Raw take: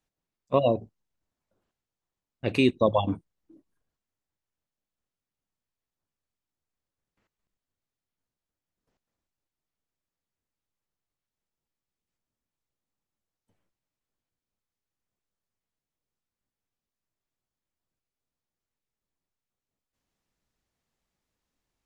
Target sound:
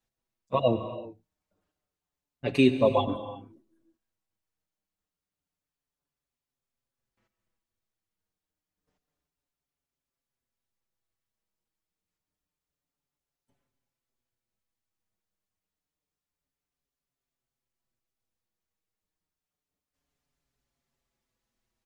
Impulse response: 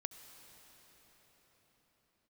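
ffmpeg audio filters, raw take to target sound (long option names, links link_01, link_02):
-filter_complex "[1:a]atrim=start_sample=2205,afade=type=out:start_time=0.42:duration=0.01,atrim=end_sample=18963[link_01];[0:a][link_01]afir=irnorm=-1:irlink=0,asplit=2[link_02][link_03];[link_03]adelay=5.6,afreqshift=-0.28[link_04];[link_02][link_04]amix=inputs=2:normalize=1,volume=5.5dB"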